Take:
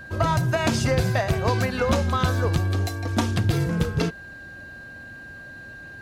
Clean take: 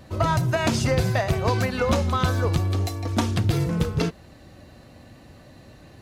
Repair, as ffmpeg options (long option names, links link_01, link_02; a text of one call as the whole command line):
ffmpeg -i in.wav -af "bandreject=frequency=1600:width=30" out.wav